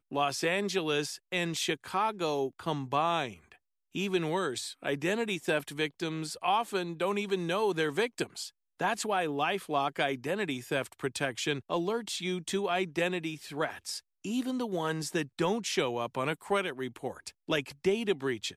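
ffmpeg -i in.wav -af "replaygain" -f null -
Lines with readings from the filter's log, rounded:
track_gain = +11.6 dB
track_peak = 0.122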